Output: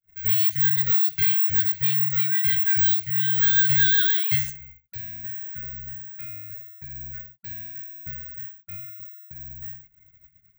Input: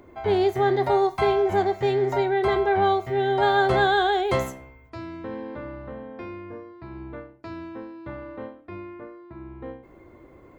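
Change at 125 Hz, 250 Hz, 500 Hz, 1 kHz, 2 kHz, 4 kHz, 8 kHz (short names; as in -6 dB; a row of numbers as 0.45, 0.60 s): 0.0 dB, under -15 dB, under -40 dB, under -25 dB, +1.0 dB, +3.5 dB, n/a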